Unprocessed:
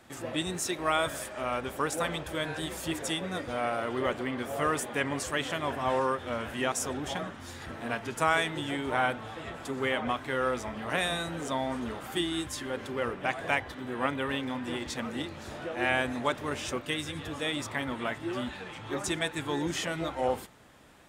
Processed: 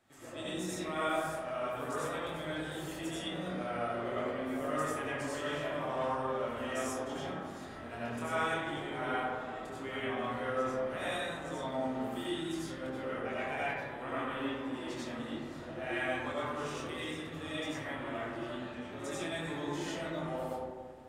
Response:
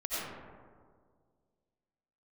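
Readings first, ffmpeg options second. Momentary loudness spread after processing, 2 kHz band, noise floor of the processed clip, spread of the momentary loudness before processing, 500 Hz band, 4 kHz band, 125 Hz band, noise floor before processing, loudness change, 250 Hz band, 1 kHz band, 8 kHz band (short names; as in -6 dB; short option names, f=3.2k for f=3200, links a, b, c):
6 LU, -6.5 dB, -45 dBFS, 8 LU, -3.5 dB, -8.0 dB, -5.0 dB, -44 dBFS, -5.0 dB, -4.0 dB, -5.0 dB, -10.0 dB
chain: -filter_complex "[0:a]flanger=delay=19.5:depth=6.3:speed=0.45[a];[1:a]atrim=start_sample=2205[b];[a][b]afir=irnorm=-1:irlink=0,volume=-8.5dB"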